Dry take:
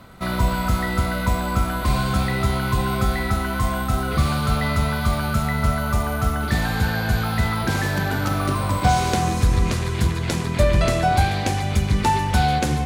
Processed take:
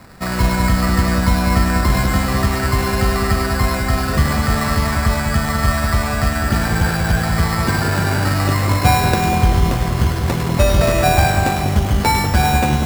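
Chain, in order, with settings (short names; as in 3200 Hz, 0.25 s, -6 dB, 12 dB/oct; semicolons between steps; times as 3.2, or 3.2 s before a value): sample-and-hold 14×; split-band echo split 1400 Hz, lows 0.194 s, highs 0.103 s, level -5.5 dB; gain +3 dB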